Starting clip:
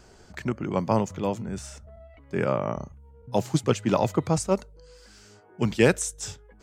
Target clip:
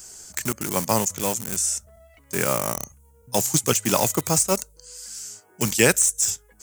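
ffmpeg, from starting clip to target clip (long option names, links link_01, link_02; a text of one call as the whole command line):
ffmpeg -i in.wav -filter_complex "[0:a]asplit=2[link_01][link_02];[link_02]aeval=exprs='val(0)*gte(abs(val(0)),0.0398)':channel_layout=same,volume=-5.5dB[link_03];[link_01][link_03]amix=inputs=2:normalize=0,highshelf=frequency=5300:width_type=q:width=1.5:gain=7.5,crystalizer=i=8.5:c=0,acrossover=split=3100[link_04][link_05];[link_05]acompressor=threshold=-12dB:ratio=4:attack=1:release=60[link_06];[link_04][link_06]amix=inputs=2:normalize=0,volume=-5dB" out.wav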